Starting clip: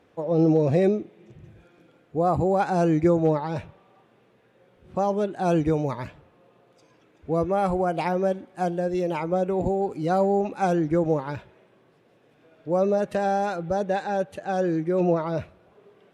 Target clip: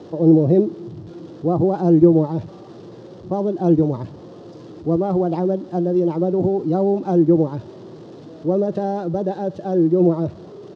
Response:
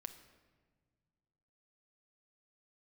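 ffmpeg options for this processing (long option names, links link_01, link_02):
-filter_complex "[0:a]aeval=exprs='val(0)+0.5*0.015*sgn(val(0))':channel_layout=same,equalizer=frequency=2300:width=2:gain=-14,atempo=1.5,acrossover=split=490[link_01][link_02];[link_01]acontrast=50[link_03];[link_03][link_02]amix=inputs=2:normalize=0,highpass=100,equalizer=frequency=110:width_type=q:width=4:gain=5,equalizer=frequency=170:width_type=q:width=4:gain=4,equalizer=frequency=340:width_type=q:width=4:gain=8,equalizer=frequency=1500:width_type=q:width=4:gain=-5,lowpass=frequency=5400:width=0.5412,lowpass=frequency=5400:width=1.3066,volume=-2.5dB"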